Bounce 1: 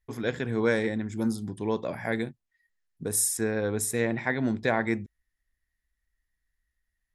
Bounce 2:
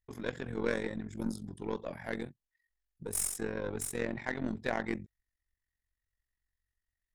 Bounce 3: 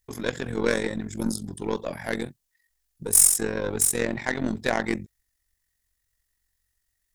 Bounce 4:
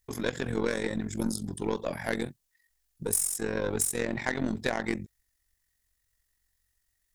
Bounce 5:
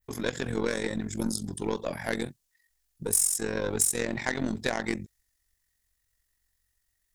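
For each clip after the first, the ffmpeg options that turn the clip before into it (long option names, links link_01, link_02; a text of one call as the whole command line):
ffmpeg -i in.wav -af "aeval=exprs='0.316*(cos(1*acos(clip(val(0)/0.316,-1,1)))-cos(1*PI/2))+0.0178*(cos(8*acos(clip(val(0)/0.316,-1,1)))-cos(8*PI/2))':channel_layout=same,tremolo=f=45:d=0.824,volume=-4.5dB" out.wav
ffmpeg -i in.wav -af "bass=frequency=250:gain=-1,treble=frequency=4000:gain=9,volume=8.5dB" out.wav
ffmpeg -i in.wav -af "acompressor=threshold=-24dB:ratio=12" out.wav
ffmpeg -i in.wav -af "adynamicequalizer=threshold=0.00708:dfrequency=6400:dqfactor=0.71:tfrequency=6400:tqfactor=0.71:attack=5:release=100:ratio=0.375:range=3:mode=boostabove:tftype=bell" out.wav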